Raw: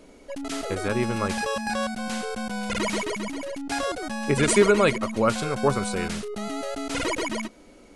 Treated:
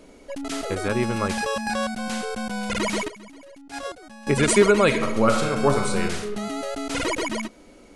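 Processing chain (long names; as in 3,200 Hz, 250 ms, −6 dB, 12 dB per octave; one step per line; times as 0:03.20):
0:03.08–0:04.27: noise gate −25 dBFS, range −14 dB
0:04.85–0:06.24: thrown reverb, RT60 0.83 s, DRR 4 dB
level +1.5 dB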